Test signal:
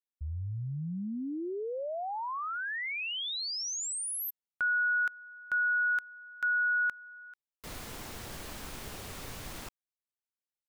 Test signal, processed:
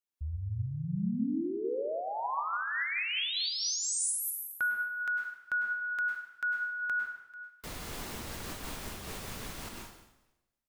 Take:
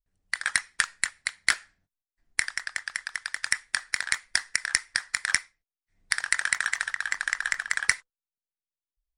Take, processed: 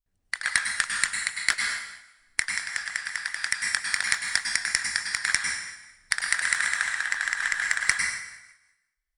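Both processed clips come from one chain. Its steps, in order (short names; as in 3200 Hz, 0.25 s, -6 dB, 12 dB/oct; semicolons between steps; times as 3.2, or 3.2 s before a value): plate-style reverb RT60 1 s, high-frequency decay 0.95×, pre-delay 90 ms, DRR 1.5 dB; noise-modulated level, depth 50%; gain +2.5 dB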